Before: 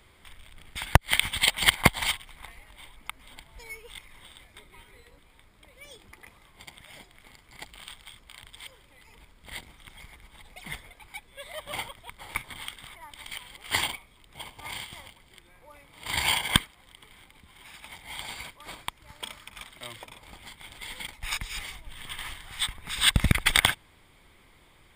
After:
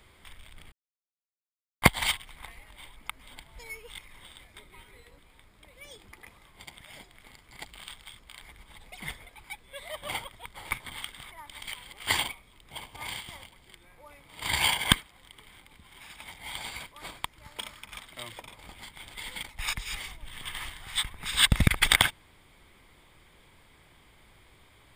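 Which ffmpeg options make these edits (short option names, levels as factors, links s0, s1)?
-filter_complex "[0:a]asplit=4[s0][s1][s2][s3];[s0]atrim=end=0.72,asetpts=PTS-STARTPTS,afade=t=out:st=0.716:d=0.004:c=hsin[s4];[s1]atrim=start=0.72:end=1.82,asetpts=PTS-STARTPTS,volume=0[s5];[s2]atrim=start=1.82:end=8.422,asetpts=PTS-STARTPTS,afade=t=in:d=0.004:c=hsin[s6];[s3]atrim=start=10.058[s7];[s4][s5][s6]concat=n=3:v=0:a=1[s8];[s8][s7]acrossfade=d=0.004:c1=hsin:c2=hsin"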